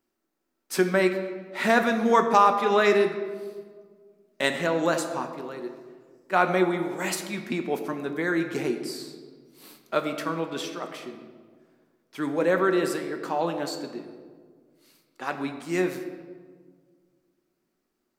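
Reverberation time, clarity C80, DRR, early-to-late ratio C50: 1.7 s, 9.5 dB, 5.0 dB, 8.0 dB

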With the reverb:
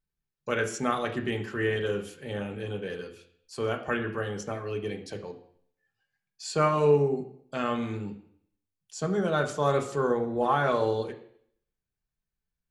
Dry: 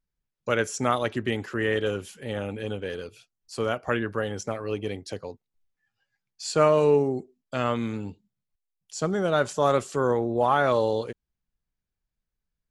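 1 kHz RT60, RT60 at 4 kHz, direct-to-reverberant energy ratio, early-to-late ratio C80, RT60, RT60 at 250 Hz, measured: 0.60 s, 0.65 s, 2.0 dB, 14.0 dB, 0.60 s, 0.60 s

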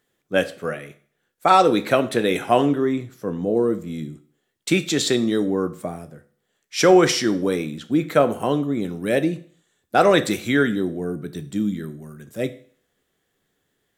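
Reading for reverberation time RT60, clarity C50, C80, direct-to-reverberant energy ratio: 0.50 s, 16.5 dB, 19.5 dB, 10.5 dB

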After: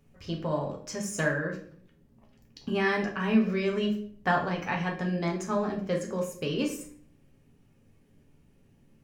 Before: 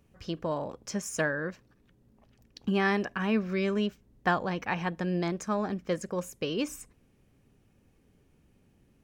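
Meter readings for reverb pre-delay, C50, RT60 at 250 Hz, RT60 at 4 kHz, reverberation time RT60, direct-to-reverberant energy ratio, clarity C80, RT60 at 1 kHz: 7 ms, 8.5 dB, 0.70 s, 0.40 s, 0.55 s, 0.0 dB, 12.5 dB, 0.50 s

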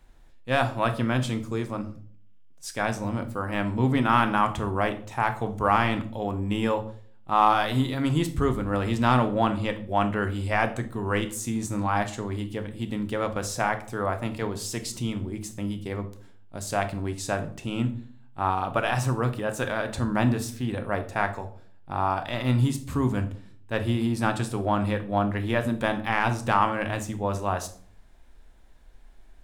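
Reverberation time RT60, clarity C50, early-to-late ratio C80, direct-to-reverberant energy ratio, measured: 0.50 s, 13.5 dB, 18.0 dB, 7.0 dB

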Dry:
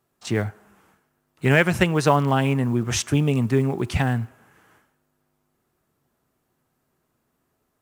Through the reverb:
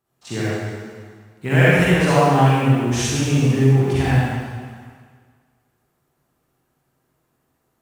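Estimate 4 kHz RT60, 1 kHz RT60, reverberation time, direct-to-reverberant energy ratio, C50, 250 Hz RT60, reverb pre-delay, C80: 1.6 s, 1.8 s, 1.7 s, −9.5 dB, −7.0 dB, 1.7 s, 38 ms, −3.0 dB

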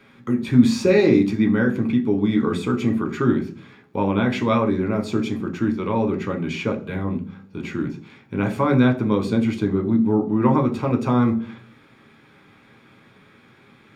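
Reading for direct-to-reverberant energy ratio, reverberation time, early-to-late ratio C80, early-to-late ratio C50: 3.0 dB, 0.45 s, 18.5 dB, 14.0 dB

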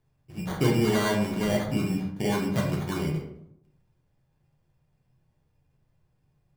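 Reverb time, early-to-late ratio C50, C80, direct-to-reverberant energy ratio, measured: 0.75 s, 5.0 dB, 8.5 dB, −2.0 dB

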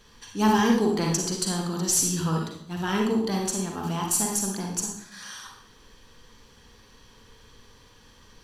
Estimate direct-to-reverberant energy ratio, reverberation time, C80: 0.0 dB, 0.70 s, 7.0 dB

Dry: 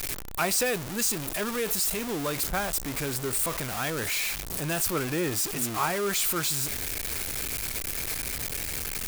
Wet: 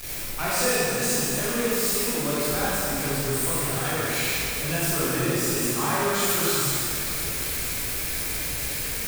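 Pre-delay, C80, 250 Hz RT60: 14 ms, −3.5 dB, 3.1 s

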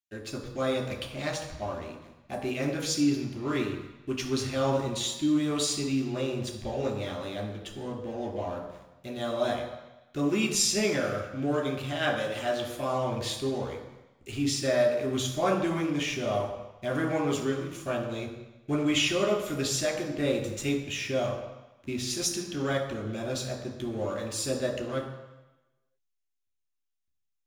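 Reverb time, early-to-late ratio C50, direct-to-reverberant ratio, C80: 1.0 s, 6.5 dB, 0.0 dB, 8.5 dB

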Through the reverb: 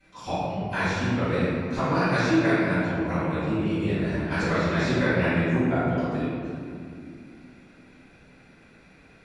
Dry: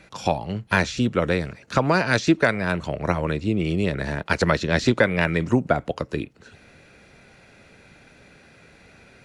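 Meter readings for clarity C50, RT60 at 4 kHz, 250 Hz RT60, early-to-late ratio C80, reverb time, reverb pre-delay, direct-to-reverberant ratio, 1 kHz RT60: −5.0 dB, 1.3 s, 4.2 s, −1.5 dB, 2.5 s, 3 ms, −17.5 dB, 2.2 s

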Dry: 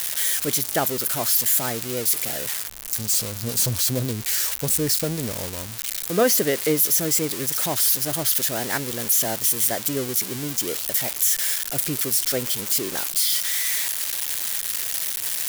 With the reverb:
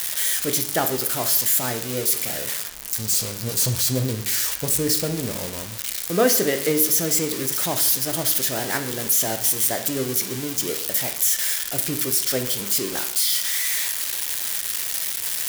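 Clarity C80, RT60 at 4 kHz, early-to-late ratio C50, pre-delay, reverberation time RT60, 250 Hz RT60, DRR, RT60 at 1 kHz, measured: 13.0 dB, 0.65 s, 10.0 dB, 10 ms, 0.70 s, 0.70 s, 6.0 dB, 0.70 s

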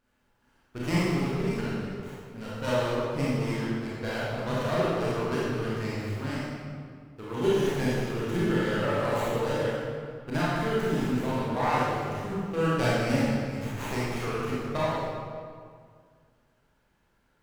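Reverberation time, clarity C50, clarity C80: 2.0 s, −4.5 dB, −1.0 dB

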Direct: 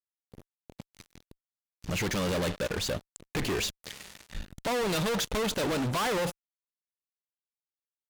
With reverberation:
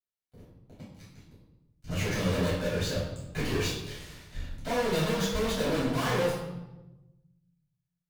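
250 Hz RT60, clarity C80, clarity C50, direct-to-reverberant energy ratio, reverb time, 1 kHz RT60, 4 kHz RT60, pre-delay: 1.4 s, 5.0 dB, 2.0 dB, −11.0 dB, 1.0 s, 0.95 s, 0.75 s, 3 ms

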